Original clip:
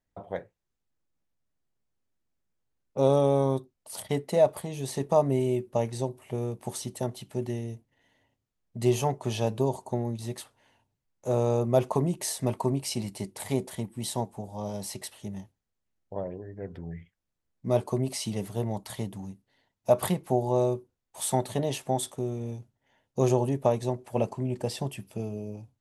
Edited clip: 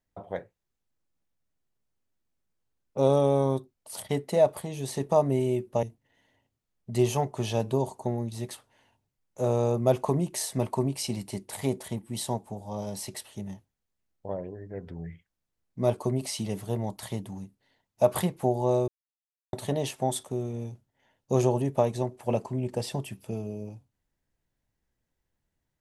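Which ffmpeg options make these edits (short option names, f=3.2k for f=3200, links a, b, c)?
-filter_complex "[0:a]asplit=4[a][b][c][d];[a]atrim=end=5.832[e];[b]atrim=start=7.698:end=20.75,asetpts=PTS-STARTPTS,afade=t=out:st=13.048:d=0.004:c=hsin[f];[c]atrim=start=20.75:end=21.4,asetpts=PTS-STARTPTS,volume=0[g];[d]atrim=start=21.4,asetpts=PTS-STARTPTS,afade=t=in:d=0.004:c=hsin[h];[f][g][h]concat=n=3:v=0:a=1[i];[e][i]acrossfade=d=0.004:c1=hsin:c2=hsin"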